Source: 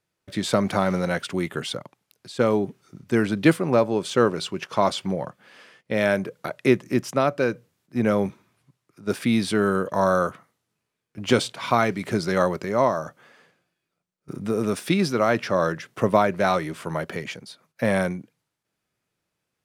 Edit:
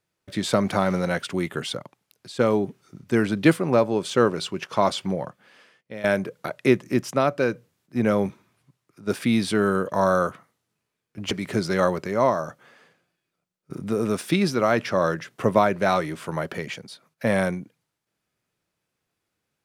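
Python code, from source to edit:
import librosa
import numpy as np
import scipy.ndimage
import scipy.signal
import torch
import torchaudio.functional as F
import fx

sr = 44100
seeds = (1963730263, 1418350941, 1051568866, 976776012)

y = fx.edit(x, sr, fx.fade_out_to(start_s=5.15, length_s=0.89, floor_db=-15.5),
    fx.cut(start_s=11.31, length_s=0.58), tone=tone)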